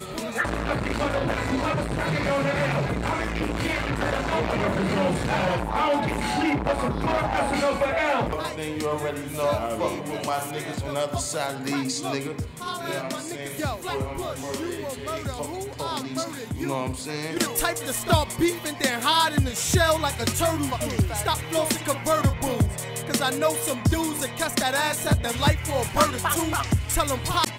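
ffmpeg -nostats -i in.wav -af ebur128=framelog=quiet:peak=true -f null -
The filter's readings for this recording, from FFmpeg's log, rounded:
Integrated loudness:
  I:         -25.3 LUFS
  Threshold: -35.3 LUFS
Loudness range:
  LRA:         7.3 LU
  Threshold: -45.3 LUFS
  LRA low:   -30.3 LUFS
  LRA high:  -23.0 LUFS
True peak:
  Peak:       -8.4 dBFS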